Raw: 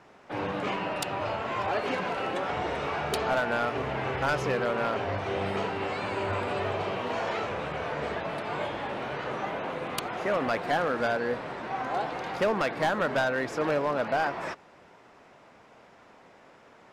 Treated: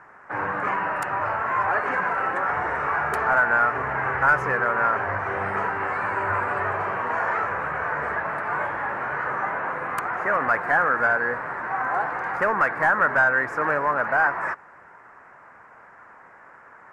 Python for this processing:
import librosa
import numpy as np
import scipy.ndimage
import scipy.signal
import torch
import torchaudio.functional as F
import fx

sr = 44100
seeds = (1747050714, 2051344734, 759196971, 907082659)

y = fx.curve_eq(x, sr, hz=(130.0, 230.0, 670.0, 970.0, 1700.0, 3500.0, 7800.0), db=(0, -4, 1, 9, 13, -17, -4))